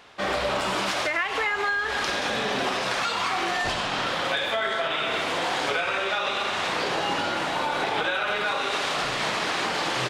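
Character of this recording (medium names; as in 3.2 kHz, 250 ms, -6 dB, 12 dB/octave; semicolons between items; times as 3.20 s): noise floor -28 dBFS; spectral tilt -2.5 dB/octave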